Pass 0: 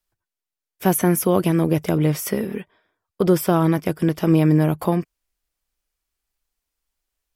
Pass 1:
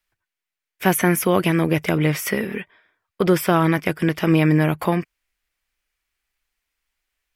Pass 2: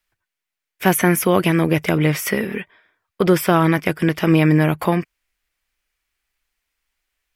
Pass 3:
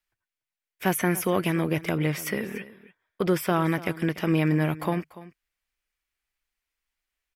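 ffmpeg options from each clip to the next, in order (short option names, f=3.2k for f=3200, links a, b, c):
-af "equalizer=f=2.1k:w=0.93:g=11.5,volume=-1dB"
-af "asoftclip=type=hard:threshold=-3dB,volume=2dB"
-af "aecho=1:1:290:0.133,volume=-8.5dB"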